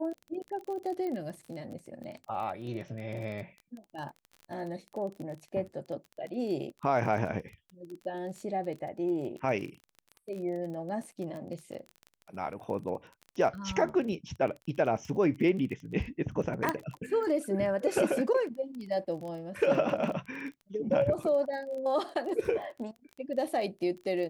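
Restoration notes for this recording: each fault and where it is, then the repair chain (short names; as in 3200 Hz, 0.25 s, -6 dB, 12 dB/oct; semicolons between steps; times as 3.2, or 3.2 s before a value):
crackle 21/s -38 dBFS
1.07 pop -27 dBFS
16.69 pop -13 dBFS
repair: de-click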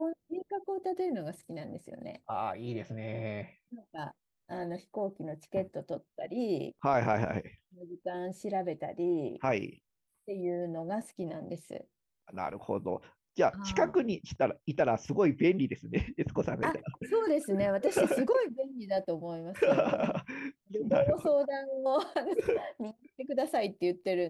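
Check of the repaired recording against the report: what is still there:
none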